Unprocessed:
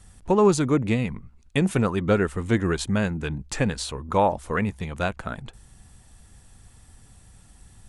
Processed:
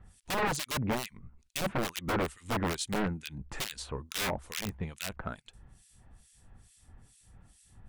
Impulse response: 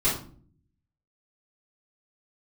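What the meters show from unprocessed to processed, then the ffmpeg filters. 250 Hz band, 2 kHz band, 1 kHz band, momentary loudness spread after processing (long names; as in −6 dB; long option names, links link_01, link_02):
−12.5 dB, −5.5 dB, −8.5 dB, 9 LU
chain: -filter_complex "[0:a]aeval=exprs='(mod(7.08*val(0)+1,2)-1)/7.08':channel_layout=same,acrossover=split=2200[link_01][link_02];[link_01]aeval=exprs='val(0)*(1-1/2+1/2*cos(2*PI*2.3*n/s))':channel_layout=same[link_03];[link_02]aeval=exprs='val(0)*(1-1/2-1/2*cos(2*PI*2.3*n/s))':channel_layout=same[link_04];[link_03][link_04]amix=inputs=2:normalize=0,aeval=exprs='(tanh(8.91*val(0)+0.05)-tanh(0.05))/8.91':channel_layout=same,volume=-2.5dB"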